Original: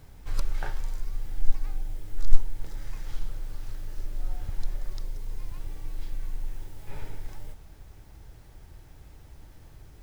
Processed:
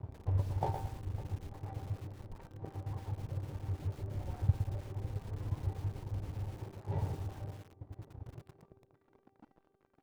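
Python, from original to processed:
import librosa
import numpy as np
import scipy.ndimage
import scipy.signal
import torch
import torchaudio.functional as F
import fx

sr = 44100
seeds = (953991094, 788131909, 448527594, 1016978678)

p1 = scipy.signal.sosfilt(scipy.signal.cheby1(5, 1.0, 960.0, 'lowpass', fs=sr, output='sos'), x)
p2 = fx.dereverb_blind(p1, sr, rt60_s=1.9)
p3 = fx.over_compress(p2, sr, threshold_db=-28.0, ratio=-1.0)
p4 = p2 + F.gain(torch.from_numpy(p3), 0.0).numpy()
p5 = fx.filter_sweep_highpass(p4, sr, from_hz=97.0, to_hz=230.0, start_s=8.23, end_s=8.85, q=3.6)
p6 = np.sign(p5) * np.maximum(np.abs(p5) - 10.0 ** (-45.0 / 20.0), 0.0)
p7 = fx.comb_fb(p6, sr, f0_hz=390.0, decay_s=0.83, harmonics='all', damping=0.0, mix_pct=80)
p8 = p7 + fx.echo_banded(p7, sr, ms=554, feedback_pct=59, hz=350.0, wet_db=-16.0, dry=0)
p9 = fx.echo_crushed(p8, sr, ms=114, feedback_pct=35, bits=10, wet_db=-7.0)
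y = F.gain(torch.from_numpy(p9), 11.0).numpy()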